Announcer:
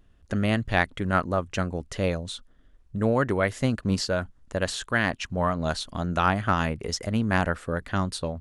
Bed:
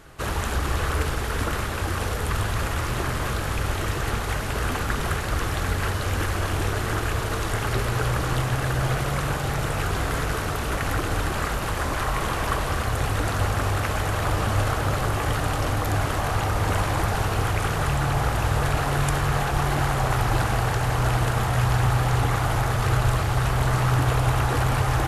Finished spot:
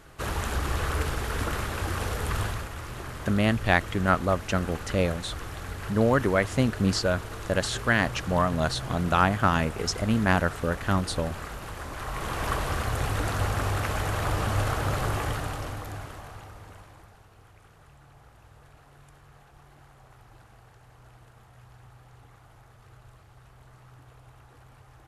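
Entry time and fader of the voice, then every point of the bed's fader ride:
2.95 s, +1.0 dB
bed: 2.46 s -3.5 dB
2.68 s -11.5 dB
11.91 s -11.5 dB
12.47 s -3.5 dB
15.16 s -3.5 dB
17.23 s -31 dB

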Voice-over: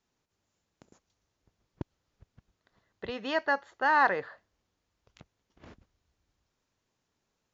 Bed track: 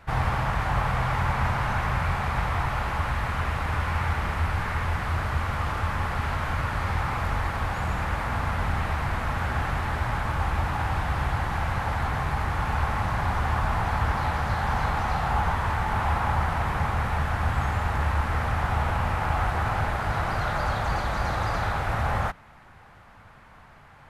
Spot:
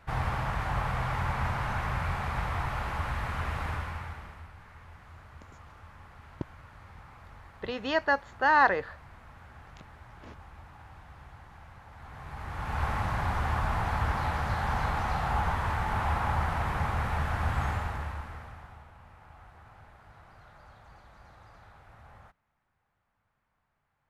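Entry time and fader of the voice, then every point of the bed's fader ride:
4.60 s, +2.0 dB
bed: 3.68 s -5.5 dB
4.53 s -23.5 dB
11.9 s -23.5 dB
12.85 s -4 dB
17.7 s -4 dB
18.9 s -27.5 dB

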